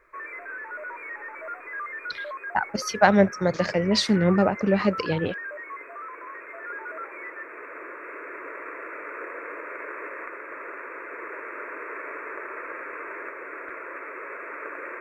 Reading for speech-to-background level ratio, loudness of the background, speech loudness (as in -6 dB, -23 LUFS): 13.0 dB, -36.0 LUFS, -23.0 LUFS